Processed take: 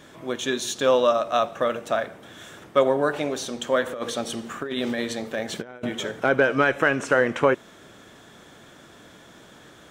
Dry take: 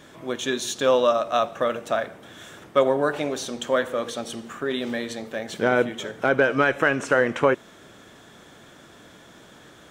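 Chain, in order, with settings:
0:03.86–0:06.20: compressor whose output falls as the input rises −28 dBFS, ratio −0.5

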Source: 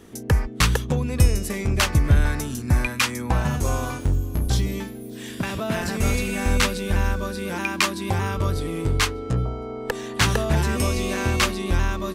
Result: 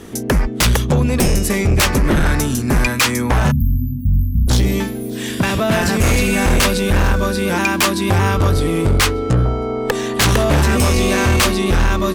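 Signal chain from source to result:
sine wavefolder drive 13 dB, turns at −4 dBFS
time-frequency box erased 0:03.51–0:04.47, 260–12,000 Hz
level −5.5 dB

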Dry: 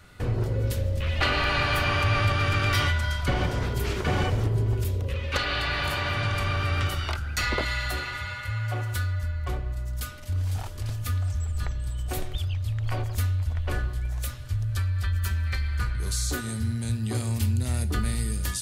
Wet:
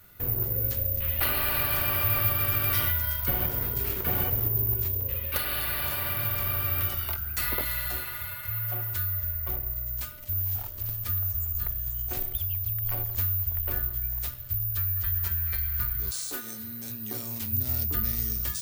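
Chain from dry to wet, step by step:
0:16.10–0:17.51: high-pass filter 310 Hz → 150 Hz 12 dB per octave
bad sample-rate conversion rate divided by 3×, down none, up zero stuff
level −7 dB

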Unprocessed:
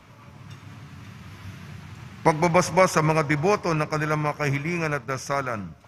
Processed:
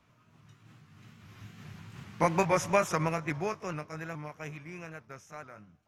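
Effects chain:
pitch shifter swept by a sawtooth +2 semitones, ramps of 416 ms
source passing by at 0:02.23, 8 m/s, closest 4.7 metres
level −4 dB

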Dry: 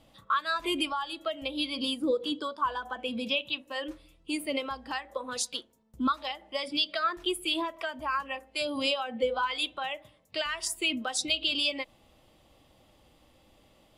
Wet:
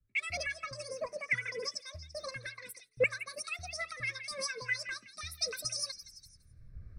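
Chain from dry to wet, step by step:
camcorder AGC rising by 6.5 dB per second
low-shelf EQ 96 Hz +12 dB
phaser with its sweep stopped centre 2,300 Hz, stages 8
in parallel at −6.5 dB: dead-zone distortion −54 dBFS
on the sum: high-frequency loss of the air 130 metres
on a send: echo through a band-pass that steps 338 ms, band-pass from 1,400 Hz, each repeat 0.7 octaves, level −5 dB
on the sum: wrong playback speed 7.5 ips tape played at 15 ips
multiband upward and downward expander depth 100%
level −6.5 dB

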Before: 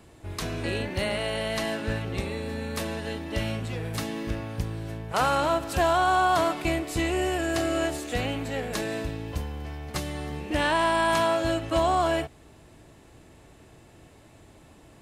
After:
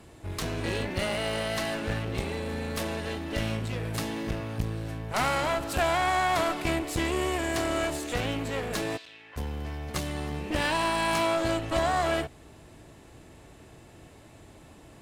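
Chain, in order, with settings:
asymmetric clip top −34 dBFS
0:08.96–0:09.36: resonant band-pass 4,500 Hz → 1,600 Hz, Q 2
level +1.5 dB

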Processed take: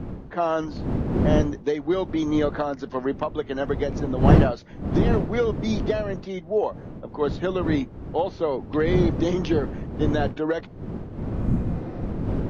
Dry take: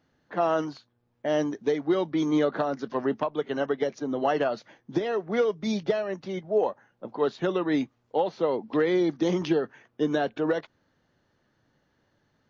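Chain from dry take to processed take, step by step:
wind on the microphone 240 Hz −27 dBFS
healed spectral selection 0:11.38–0:11.99, 270–6,100 Hz
level +1 dB

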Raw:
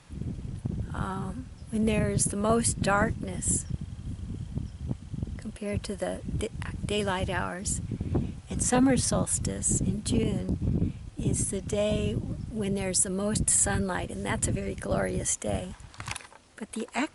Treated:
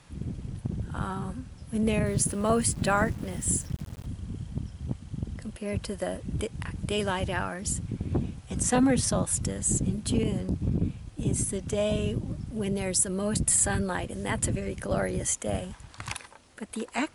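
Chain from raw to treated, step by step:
0:02.06–0:04.06: centre clipping without the shift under −42.5 dBFS

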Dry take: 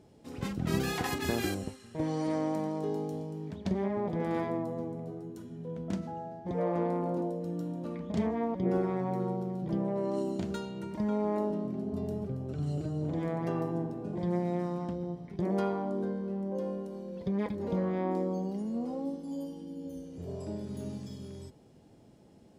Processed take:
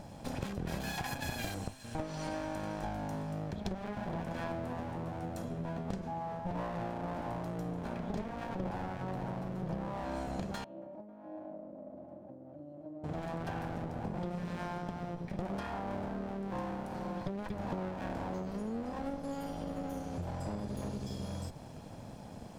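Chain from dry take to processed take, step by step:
lower of the sound and its delayed copy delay 1.2 ms
downward compressor 6 to 1, threshold −48 dBFS, peak gain reduction 19.5 dB
0:10.64–0:13.04: pair of resonant band-passes 430 Hz, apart 0.85 octaves
level +12 dB

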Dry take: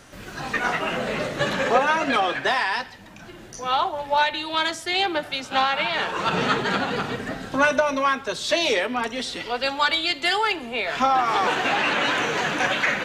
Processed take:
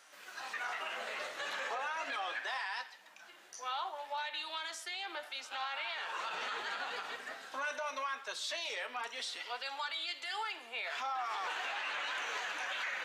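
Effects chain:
high-pass filter 840 Hz 12 dB per octave
brickwall limiter −20.5 dBFS, peak gain reduction 11.5 dB
flanger 0.72 Hz, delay 5.9 ms, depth 5.1 ms, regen +81%
level −5 dB

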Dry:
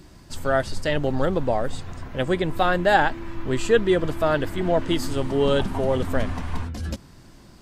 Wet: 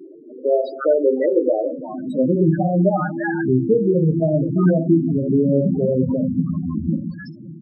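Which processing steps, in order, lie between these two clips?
parametric band 74 Hz −3 dB 0.67 octaves
downward compressor 5 to 1, threshold −25 dBFS, peak gain reduction 12 dB
multiband delay without the direct sound lows, highs 340 ms, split 890 Hz
high-pass filter sweep 380 Hz → 170 Hz, 0:01.33–0:02.71
rectangular room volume 87 cubic metres, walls mixed, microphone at 0.5 metres
spectral peaks only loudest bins 8
level +9 dB

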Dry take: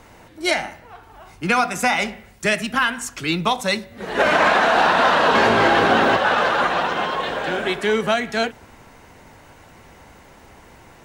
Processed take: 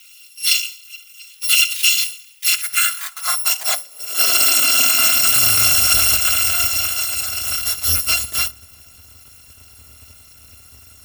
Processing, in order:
samples in bit-reversed order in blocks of 256 samples
high-pass filter sweep 2,800 Hz → 73 Hz, 0:02.32–0:05.92
level +1.5 dB

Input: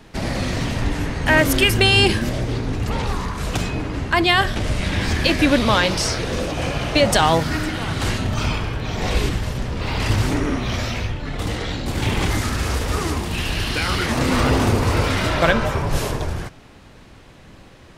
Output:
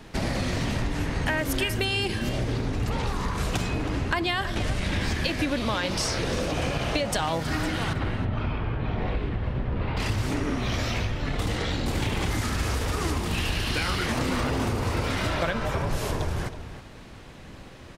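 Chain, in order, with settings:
downward compressor 10 to 1, threshold −23 dBFS, peak gain reduction 13 dB
0:07.93–0:09.97: high-frequency loss of the air 460 metres
slap from a distant wall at 55 metres, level −11 dB

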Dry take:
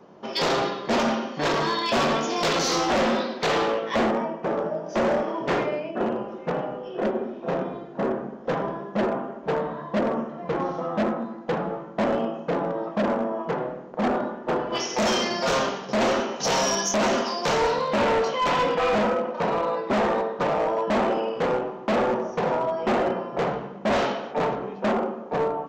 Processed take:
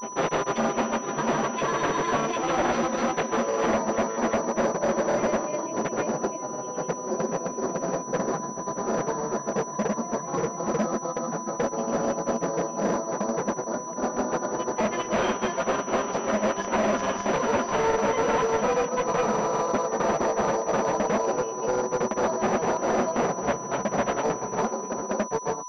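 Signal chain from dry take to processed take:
granular cloud 100 ms, grains 20 per second, spray 472 ms
steady tone 1,000 Hz −37 dBFS
switching amplifier with a slow clock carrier 5,900 Hz

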